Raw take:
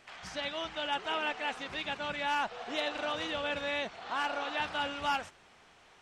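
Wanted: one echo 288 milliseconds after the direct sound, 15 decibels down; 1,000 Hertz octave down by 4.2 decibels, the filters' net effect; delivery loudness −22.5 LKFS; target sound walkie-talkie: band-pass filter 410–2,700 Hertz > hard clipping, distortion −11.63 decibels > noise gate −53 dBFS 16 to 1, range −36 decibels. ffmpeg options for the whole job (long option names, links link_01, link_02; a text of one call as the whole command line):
ffmpeg -i in.wav -af "highpass=410,lowpass=2700,equalizer=frequency=1000:width_type=o:gain=-5,aecho=1:1:288:0.178,asoftclip=type=hard:threshold=-33.5dB,agate=range=-36dB:threshold=-53dB:ratio=16,volume=16.5dB" out.wav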